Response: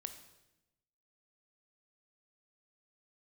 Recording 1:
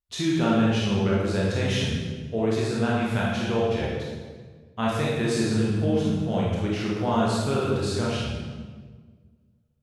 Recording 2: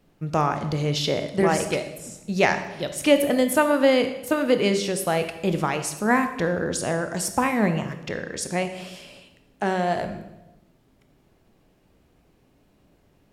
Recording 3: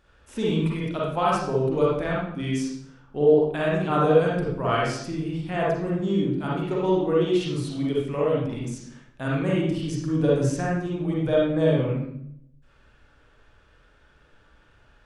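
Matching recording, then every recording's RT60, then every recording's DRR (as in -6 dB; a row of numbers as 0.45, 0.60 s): 2; 1.5, 0.95, 0.70 s; -6.0, 8.0, -6.0 dB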